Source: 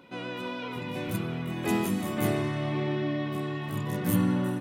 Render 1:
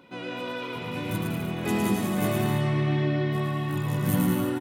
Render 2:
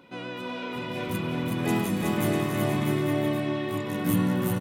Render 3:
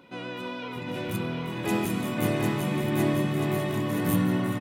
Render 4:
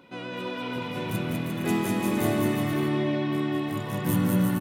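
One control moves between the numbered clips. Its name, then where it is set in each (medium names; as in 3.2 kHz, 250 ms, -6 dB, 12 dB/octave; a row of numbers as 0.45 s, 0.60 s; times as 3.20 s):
bouncing-ball echo, first gap: 110 ms, 370 ms, 750 ms, 200 ms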